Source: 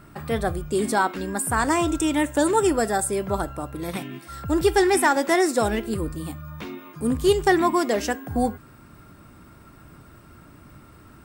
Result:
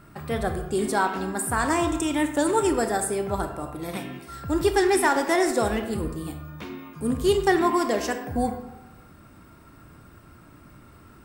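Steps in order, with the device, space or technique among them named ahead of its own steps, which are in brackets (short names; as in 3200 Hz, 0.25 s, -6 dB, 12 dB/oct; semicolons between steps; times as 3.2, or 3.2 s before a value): saturated reverb return (on a send at -5.5 dB: reverb RT60 0.95 s, pre-delay 25 ms + soft clip -15 dBFS, distortion -16 dB); on the sum: gain -2.5 dB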